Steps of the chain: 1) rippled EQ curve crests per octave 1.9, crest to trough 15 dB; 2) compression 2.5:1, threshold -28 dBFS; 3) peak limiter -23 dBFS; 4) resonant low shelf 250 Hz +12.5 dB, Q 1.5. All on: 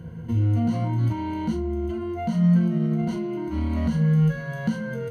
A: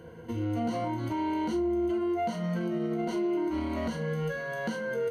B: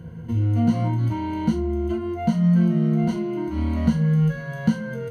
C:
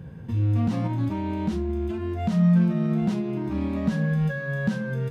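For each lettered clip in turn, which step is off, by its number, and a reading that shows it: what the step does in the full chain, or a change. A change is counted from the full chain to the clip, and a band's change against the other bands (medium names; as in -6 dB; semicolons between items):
4, 125 Hz band -15.5 dB; 3, crest factor change +3.5 dB; 1, 2 kHz band +4.5 dB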